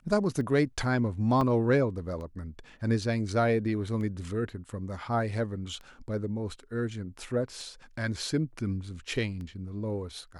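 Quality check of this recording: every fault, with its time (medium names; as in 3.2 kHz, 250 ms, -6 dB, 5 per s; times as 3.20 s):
tick 33 1/3 rpm -30 dBFS
1.41 s: dropout 3.2 ms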